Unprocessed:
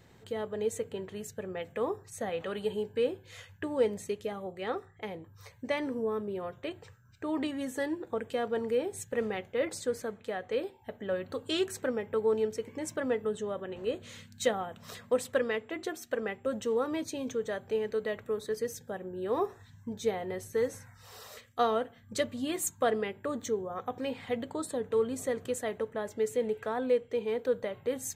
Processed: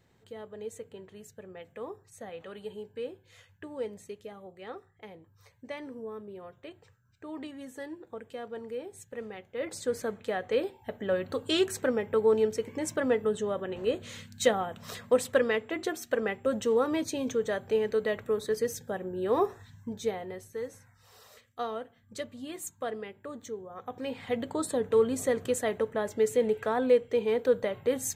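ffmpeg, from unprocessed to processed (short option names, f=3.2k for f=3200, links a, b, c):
-af "volume=15.5dB,afade=t=in:st=9.48:d=0.63:silence=0.251189,afade=t=out:st=19.48:d=1.03:silence=0.281838,afade=t=in:st=23.72:d=0.93:silence=0.266073"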